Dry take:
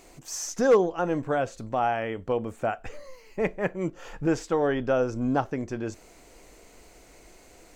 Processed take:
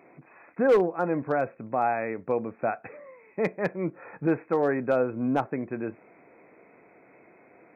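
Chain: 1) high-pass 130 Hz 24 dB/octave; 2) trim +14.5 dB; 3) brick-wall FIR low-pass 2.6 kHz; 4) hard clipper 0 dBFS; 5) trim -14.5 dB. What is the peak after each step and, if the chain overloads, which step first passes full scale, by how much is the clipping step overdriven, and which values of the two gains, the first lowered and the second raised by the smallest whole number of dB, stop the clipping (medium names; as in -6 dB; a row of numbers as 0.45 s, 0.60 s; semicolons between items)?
-8.0 dBFS, +6.5 dBFS, +6.0 dBFS, 0.0 dBFS, -14.5 dBFS; step 2, 6.0 dB; step 2 +8.5 dB, step 5 -8.5 dB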